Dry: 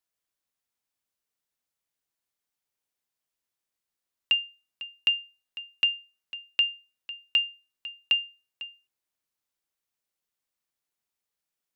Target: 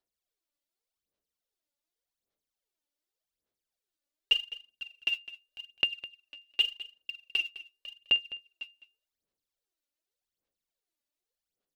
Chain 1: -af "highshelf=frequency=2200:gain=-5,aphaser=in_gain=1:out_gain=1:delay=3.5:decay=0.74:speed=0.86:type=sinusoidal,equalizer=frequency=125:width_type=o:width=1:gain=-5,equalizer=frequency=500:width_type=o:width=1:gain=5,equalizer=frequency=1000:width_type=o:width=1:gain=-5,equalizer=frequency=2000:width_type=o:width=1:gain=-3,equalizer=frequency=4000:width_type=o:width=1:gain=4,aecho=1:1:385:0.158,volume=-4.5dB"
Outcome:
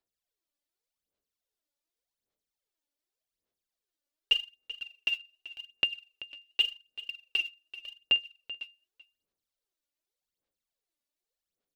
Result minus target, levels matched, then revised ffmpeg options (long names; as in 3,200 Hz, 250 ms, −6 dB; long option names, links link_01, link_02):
echo 178 ms late
-af "highshelf=frequency=2200:gain=-5,aphaser=in_gain=1:out_gain=1:delay=3.5:decay=0.74:speed=0.86:type=sinusoidal,equalizer=frequency=125:width_type=o:width=1:gain=-5,equalizer=frequency=500:width_type=o:width=1:gain=5,equalizer=frequency=1000:width_type=o:width=1:gain=-5,equalizer=frequency=2000:width_type=o:width=1:gain=-3,equalizer=frequency=4000:width_type=o:width=1:gain=4,aecho=1:1:207:0.158,volume=-4.5dB"